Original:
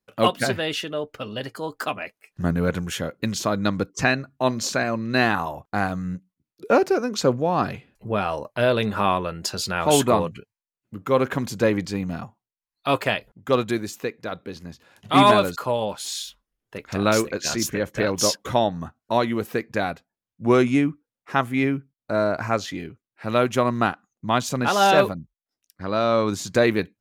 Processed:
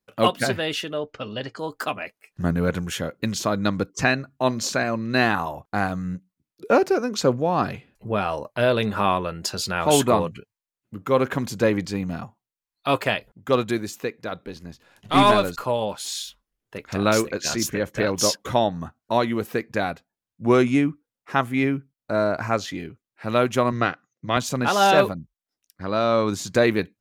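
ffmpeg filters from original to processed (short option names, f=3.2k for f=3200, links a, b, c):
-filter_complex "[0:a]asettb=1/sr,asplit=3[a][b][c];[a]atrim=end=0.974[d];[b]atrim=start=0.97:end=1.59,asetpts=PTS-STARTPTS,afade=t=in:d=0.004:c=qsin,afade=t=out:st=0.616:d=0.004:c=qsin,lowpass=f=6.7k:w=0.5412,lowpass=f=6.7k:w=1.3066[e];[c]atrim=start=1.586[f];[d][e]acrossfade=d=0.004:c1=hsin:c2=qsin[g];[g][f]acrossfade=d=0.004:c1=qsin:c2=hsin,asettb=1/sr,asplit=3[h][i][j];[h]atrim=end=14.454[k];[i]atrim=start=14.45:end=15.63,asetpts=PTS-STARTPTS,afade=t=in:d=0.004:c=qsin,afade=t=out:st=1.176:d=0.004:c=qsin,aeval=exprs='if(lt(val(0),0),0.708*val(0),val(0))':c=same[l];[j]atrim=start=15.626[m];[k][l]acrossfade=d=0.004:c1=hsin:c2=qsin[n];[n][m]acrossfade=d=0.004:c1=qsin:c2=hsin,asettb=1/sr,asplit=3[o][p][q];[o]atrim=end=23.724[r];[p]atrim=start=23.72:end=24.37,asetpts=PTS-STARTPTS,afade=t=in:d=0.004:c=qsin,afade=t=out:st=0.646:d=0.004:c=qsin,highpass=110,equalizer=f=130:t=q:w=4:g=7,equalizer=f=210:t=q:w=4:g=-7,equalizer=f=510:t=q:w=4:g=5,equalizer=f=870:t=q:w=4:g=-10,equalizer=f=2k:t=q:w=4:g=7,equalizer=f=5.7k:t=q:w=4:g=7,lowpass=f=6.2k:w=0.5412,lowpass=f=6.2k:w=1.3066[s];[q]atrim=start=24.366[t];[r][s]acrossfade=d=0.004:c1=hsin:c2=qsin[u];[u][t]acrossfade=d=0.004:c1=qsin:c2=hsin"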